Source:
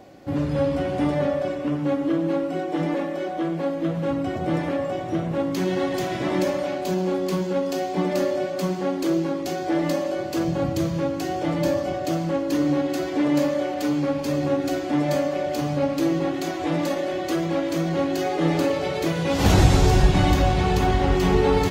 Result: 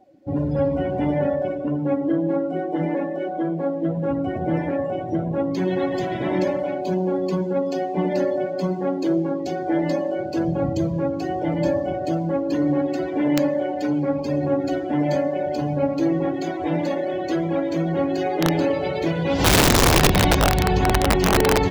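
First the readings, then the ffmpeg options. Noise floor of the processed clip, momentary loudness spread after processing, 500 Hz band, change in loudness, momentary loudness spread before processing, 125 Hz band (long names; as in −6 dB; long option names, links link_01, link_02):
−28 dBFS, 7 LU, +1.5 dB, +1.5 dB, 7 LU, −0.5 dB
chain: -af "bandreject=frequency=1200:width=8.1,afftdn=noise_reduction=19:noise_floor=-35,bandreject=frequency=288.4:width_type=h:width=4,bandreject=frequency=576.8:width_type=h:width=4,bandreject=frequency=865.2:width_type=h:width=4,bandreject=frequency=1153.6:width_type=h:width=4,bandreject=frequency=1442:width_type=h:width=4,bandreject=frequency=1730.4:width_type=h:width=4,bandreject=frequency=2018.8:width_type=h:width=4,bandreject=frequency=2307.2:width_type=h:width=4,bandreject=frequency=2595.6:width_type=h:width=4,bandreject=frequency=2884:width_type=h:width=4,bandreject=frequency=3172.4:width_type=h:width=4,bandreject=frequency=3460.8:width_type=h:width=4,aeval=exprs='(mod(3.55*val(0)+1,2)-1)/3.55':channel_layout=same,volume=1.5dB"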